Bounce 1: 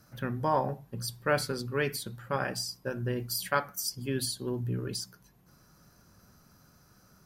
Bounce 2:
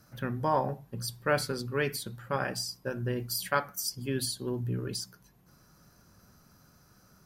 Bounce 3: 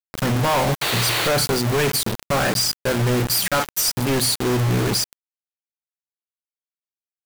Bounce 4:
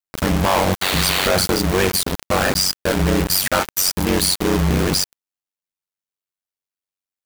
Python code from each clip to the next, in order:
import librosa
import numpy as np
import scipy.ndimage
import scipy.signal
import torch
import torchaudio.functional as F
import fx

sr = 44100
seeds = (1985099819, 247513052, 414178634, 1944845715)

y1 = x
y2 = fx.spec_paint(y1, sr, seeds[0], shape='noise', start_s=0.81, length_s=0.47, low_hz=290.0, high_hz=4700.0, level_db=-38.0)
y2 = fx.quant_companded(y2, sr, bits=2)
y2 = F.gain(torch.from_numpy(y2), 7.5).numpy()
y3 = y2 * np.sin(2.0 * np.pi * 47.0 * np.arange(len(y2)) / sr)
y3 = F.gain(torch.from_numpy(y3), 5.0).numpy()